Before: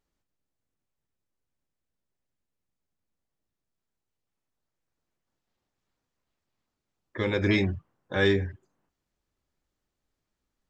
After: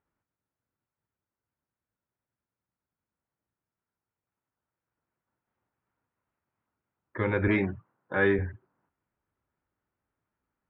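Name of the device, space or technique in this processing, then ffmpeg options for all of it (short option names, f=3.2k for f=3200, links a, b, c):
bass cabinet: -filter_complex "[0:a]highpass=62,equalizer=f=110:t=q:w=4:g=4,equalizer=f=940:t=q:w=4:g=5,equalizer=f=1.4k:t=q:w=4:g=6,lowpass=f=2.4k:w=0.5412,lowpass=f=2.4k:w=1.3066,asettb=1/sr,asplit=3[a][b][c];[a]atrim=end=7.484[d];[b]atrim=start=7.48:end=8.39,asetpts=PTS-STARTPTS,afade=t=in:d=0.004:c=qsin,afade=t=out:st=0.906:d=0.004:c=qsin,highpass=140[e];[c]atrim=start=8.386[f];[d][e]acrossfade=d=0.004:c1=hsin:c2=qsin[g];[g][f]acrossfade=d=0.004:c1=qsin:c2=hsin,volume=-1dB"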